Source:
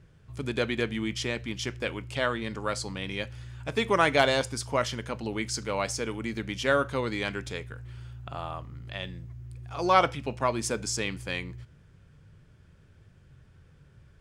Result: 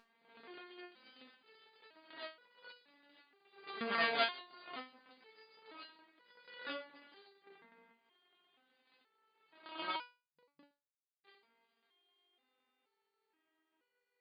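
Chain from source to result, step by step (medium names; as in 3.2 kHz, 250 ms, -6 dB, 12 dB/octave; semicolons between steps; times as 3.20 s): reverse spectral sustain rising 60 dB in 1.66 s; 7.42–7.92 s: tilt EQ -3.5 dB/octave; thinning echo 397 ms, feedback 50%, high-pass 930 Hz, level -16 dB; upward compressor, threshold -31 dBFS; mains buzz 400 Hz, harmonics 5, -36 dBFS 0 dB/octave; 9.96–11.24 s: Schmitt trigger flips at -14 dBFS; Chebyshev shaper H 3 -10 dB, 5 -39 dB, 6 -35 dB, 7 -36 dB, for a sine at -4.5 dBFS; FFT band-pass 150–4900 Hz; resonator arpeggio 2.1 Hz 230–490 Hz; trim +6 dB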